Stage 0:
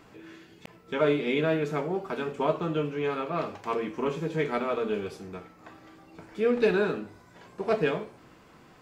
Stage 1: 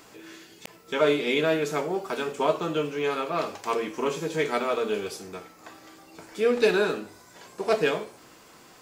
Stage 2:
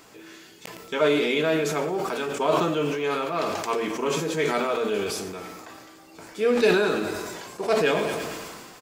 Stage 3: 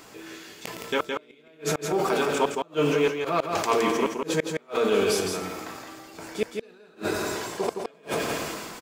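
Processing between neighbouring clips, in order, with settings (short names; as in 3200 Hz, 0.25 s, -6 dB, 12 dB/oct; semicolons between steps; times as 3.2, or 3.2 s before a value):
tone controls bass -8 dB, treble +12 dB; gain +3 dB
feedback echo 0.112 s, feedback 56%, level -16 dB; sustainer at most 30 dB/s
flipped gate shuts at -15 dBFS, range -36 dB; echo 0.166 s -5 dB; gain +3 dB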